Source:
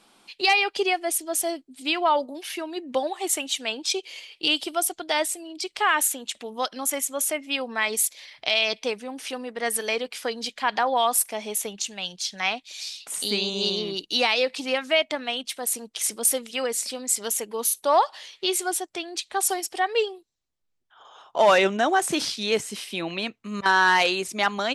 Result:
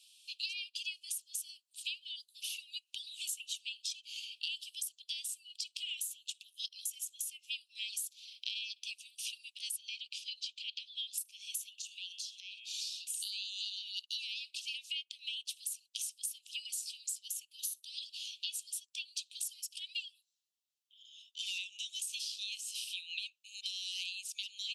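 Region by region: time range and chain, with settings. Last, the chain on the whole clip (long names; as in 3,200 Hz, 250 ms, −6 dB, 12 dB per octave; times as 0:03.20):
0:09.76–0:11.18: linear-phase brick-wall high-pass 1,700 Hz + high-frequency loss of the air 100 metres
0:11.69–0:12.68: hum removal 115.6 Hz, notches 31 + downward compressor 10 to 1, threshold −37 dBFS
whole clip: Butterworth high-pass 2,600 Hz 96 dB per octave; downward compressor 10 to 1, threshold −37 dBFS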